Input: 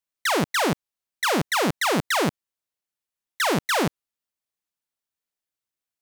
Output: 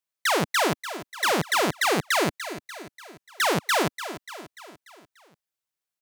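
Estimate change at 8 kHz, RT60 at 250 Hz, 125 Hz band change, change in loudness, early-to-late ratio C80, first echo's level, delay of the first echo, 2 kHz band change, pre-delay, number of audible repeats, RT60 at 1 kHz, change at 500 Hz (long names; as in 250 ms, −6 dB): +0.5 dB, no reverb audible, −3.0 dB, −1.0 dB, no reverb audible, −12.5 dB, 293 ms, +0.5 dB, no reverb audible, 5, no reverb audible, −0.5 dB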